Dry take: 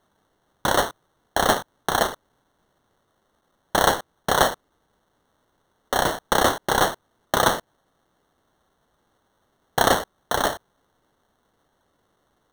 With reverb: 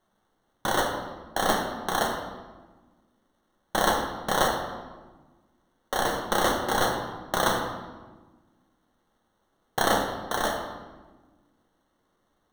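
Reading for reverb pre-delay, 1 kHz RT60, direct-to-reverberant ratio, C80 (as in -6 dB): 3 ms, 1.2 s, 1.0 dB, 6.5 dB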